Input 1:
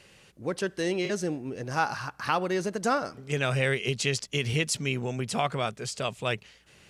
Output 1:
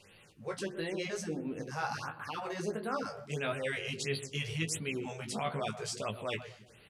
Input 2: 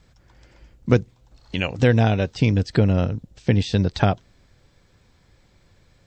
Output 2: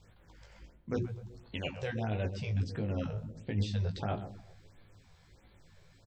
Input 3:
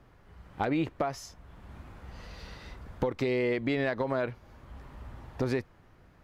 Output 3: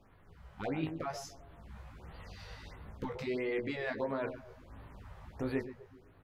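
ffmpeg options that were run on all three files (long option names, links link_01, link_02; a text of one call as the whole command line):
ffmpeg -i in.wav -filter_complex "[0:a]bandreject=frequency=60:width_type=h:width=6,bandreject=frequency=120:width_type=h:width=6,bandreject=frequency=180:width_type=h:width=6,bandreject=frequency=240:width_type=h:width=6,bandreject=frequency=300:width_type=h:width=6,bandreject=frequency=360:width_type=h:width=6,asplit=2[link_01][link_02];[link_02]adelay=19,volume=-5dB[link_03];[link_01][link_03]amix=inputs=2:normalize=0,areverse,acompressor=threshold=-27dB:ratio=6,areverse,asplit=2[link_04][link_05];[link_05]adelay=126,lowpass=frequency=1000:poles=1,volume=-9.5dB,asplit=2[link_06][link_07];[link_07]adelay=126,lowpass=frequency=1000:poles=1,volume=0.46,asplit=2[link_08][link_09];[link_09]adelay=126,lowpass=frequency=1000:poles=1,volume=0.46,asplit=2[link_10][link_11];[link_11]adelay=126,lowpass=frequency=1000:poles=1,volume=0.46,asplit=2[link_12][link_13];[link_13]adelay=126,lowpass=frequency=1000:poles=1,volume=0.46[link_14];[link_04][link_06][link_08][link_10][link_12][link_14]amix=inputs=6:normalize=0,flanger=delay=9.6:depth=5.8:regen=50:speed=0.82:shape=triangular,afftfilt=real='re*(1-between(b*sr/1024,240*pow(6800/240,0.5+0.5*sin(2*PI*1.5*pts/sr))/1.41,240*pow(6800/240,0.5+0.5*sin(2*PI*1.5*pts/sr))*1.41))':imag='im*(1-between(b*sr/1024,240*pow(6800/240,0.5+0.5*sin(2*PI*1.5*pts/sr))/1.41,240*pow(6800/240,0.5+0.5*sin(2*PI*1.5*pts/sr))*1.41))':win_size=1024:overlap=0.75" out.wav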